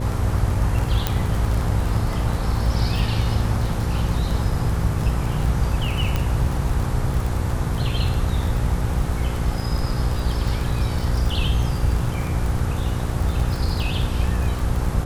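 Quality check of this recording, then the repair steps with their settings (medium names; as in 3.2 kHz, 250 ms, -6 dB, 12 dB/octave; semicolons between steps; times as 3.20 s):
buzz 60 Hz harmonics 9 -26 dBFS
crackle 28 per s -24 dBFS
1.07 s: pop -5 dBFS
6.16 s: pop -9 dBFS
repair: de-click; de-hum 60 Hz, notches 9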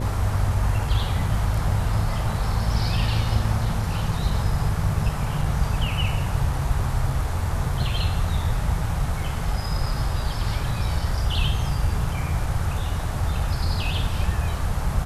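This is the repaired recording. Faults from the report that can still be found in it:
nothing left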